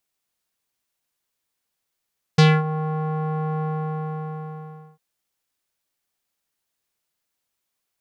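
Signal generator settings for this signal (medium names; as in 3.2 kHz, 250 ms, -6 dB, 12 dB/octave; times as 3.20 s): synth note square D#3 12 dB/octave, low-pass 1 kHz, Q 2.1, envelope 2.5 oct, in 0.25 s, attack 8 ms, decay 0.24 s, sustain -14.5 dB, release 1.36 s, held 1.24 s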